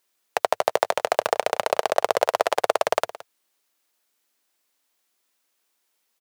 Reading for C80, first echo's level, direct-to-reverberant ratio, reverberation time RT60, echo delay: none, -16.5 dB, none, none, 0.169 s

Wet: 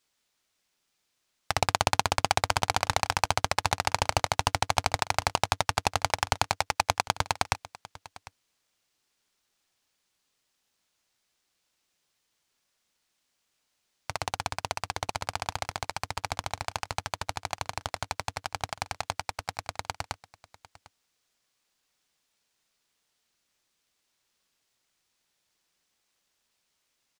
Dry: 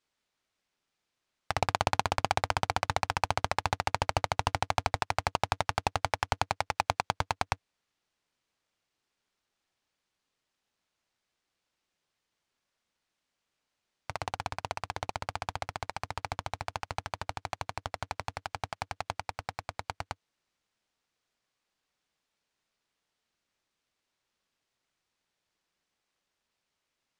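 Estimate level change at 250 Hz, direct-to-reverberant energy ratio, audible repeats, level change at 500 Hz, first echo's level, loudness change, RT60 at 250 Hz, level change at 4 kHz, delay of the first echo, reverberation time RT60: +2.0 dB, none, 1, +2.5 dB, -19.5 dB, +3.5 dB, none, +6.5 dB, 0.75 s, none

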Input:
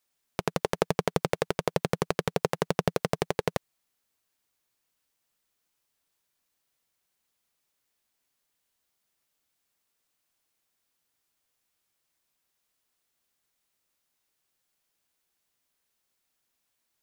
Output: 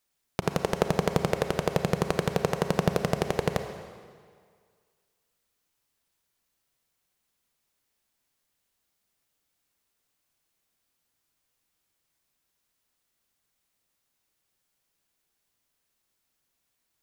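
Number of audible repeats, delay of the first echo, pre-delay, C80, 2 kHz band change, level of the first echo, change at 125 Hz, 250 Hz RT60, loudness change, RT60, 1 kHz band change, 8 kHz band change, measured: none, none, 30 ms, 9.0 dB, +1.0 dB, none, +4.0 dB, 1.7 s, +2.0 dB, 1.9 s, +1.0 dB, +0.5 dB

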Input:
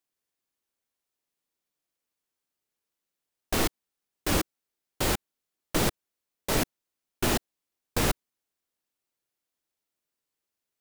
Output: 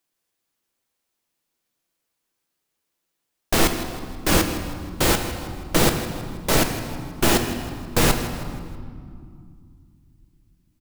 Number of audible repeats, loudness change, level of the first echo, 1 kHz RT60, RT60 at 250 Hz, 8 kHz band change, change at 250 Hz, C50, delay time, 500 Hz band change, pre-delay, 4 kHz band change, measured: 3, +7.0 dB, -14.0 dB, 2.2 s, 3.6 s, +8.0 dB, +9.0 dB, 7.0 dB, 0.16 s, +8.0 dB, 6 ms, +8.0 dB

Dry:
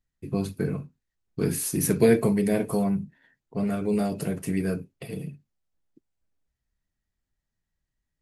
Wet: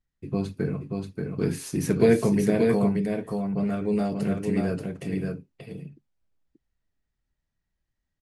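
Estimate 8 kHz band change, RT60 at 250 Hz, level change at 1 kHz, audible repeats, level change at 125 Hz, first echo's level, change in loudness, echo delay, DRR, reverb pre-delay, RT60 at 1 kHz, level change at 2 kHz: -7.5 dB, none, +1.0 dB, 1, +1.5 dB, -4.0 dB, +0.5 dB, 0.582 s, none, none, none, +0.5 dB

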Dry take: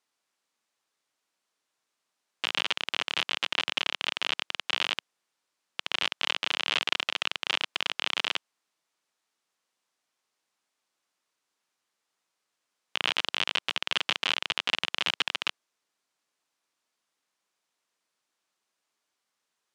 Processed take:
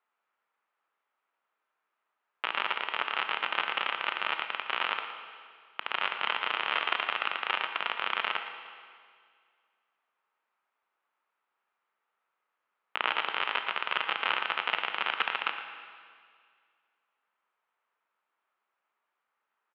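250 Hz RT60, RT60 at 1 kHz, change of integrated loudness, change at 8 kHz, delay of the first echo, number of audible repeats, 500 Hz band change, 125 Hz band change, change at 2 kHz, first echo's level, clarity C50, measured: 2.0 s, 2.0 s, -2.0 dB, under -30 dB, 0.115 s, 1, +0.5 dB, n/a, +0.5 dB, -12.0 dB, 6.5 dB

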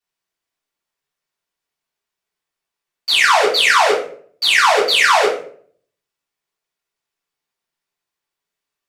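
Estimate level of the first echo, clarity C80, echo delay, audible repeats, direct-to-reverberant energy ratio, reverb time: none, 10.0 dB, none, none, -9.5 dB, 0.50 s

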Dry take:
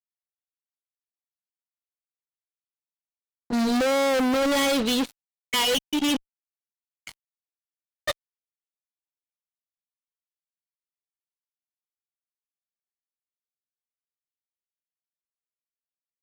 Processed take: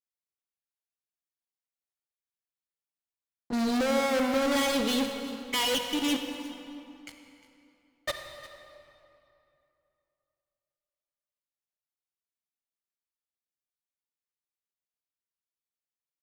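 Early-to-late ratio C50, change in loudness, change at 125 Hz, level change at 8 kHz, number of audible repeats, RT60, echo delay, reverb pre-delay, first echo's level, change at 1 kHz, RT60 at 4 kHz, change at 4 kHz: 5.0 dB, -4.5 dB, -3.5 dB, -4.0 dB, 1, 2.8 s, 0.355 s, 35 ms, -17.0 dB, -3.5 dB, 1.9 s, -4.0 dB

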